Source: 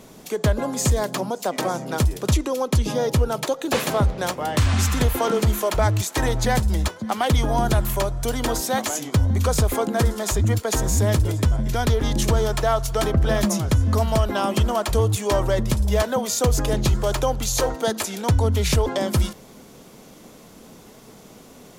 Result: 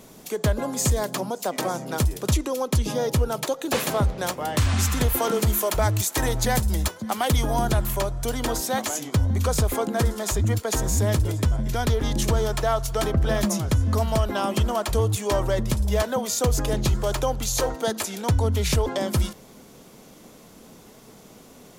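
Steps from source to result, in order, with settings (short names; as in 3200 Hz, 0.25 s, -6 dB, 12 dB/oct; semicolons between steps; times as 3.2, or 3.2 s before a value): high shelf 8400 Hz +6 dB, from 5.13 s +12 dB, from 7.65 s +2 dB; gain -2.5 dB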